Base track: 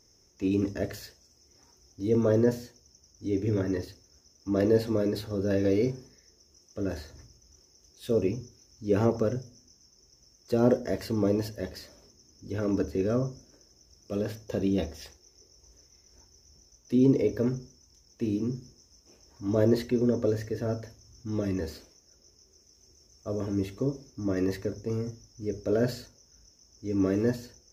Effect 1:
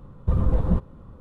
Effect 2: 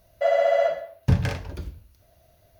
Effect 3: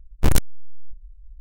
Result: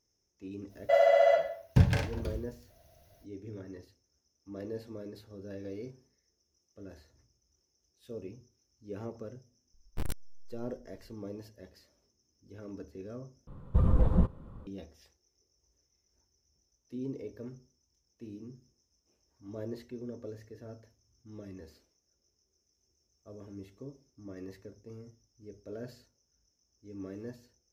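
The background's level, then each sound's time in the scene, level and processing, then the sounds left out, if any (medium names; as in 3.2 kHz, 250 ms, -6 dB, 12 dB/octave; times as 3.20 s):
base track -16.5 dB
0.68 s: add 2 -2.5 dB, fades 0.05 s + band-stop 1.2 kHz, Q 11
9.74 s: add 3 -18 dB + band-stop 6.6 kHz, Q 5.9
13.47 s: replace with 1 -3.5 dB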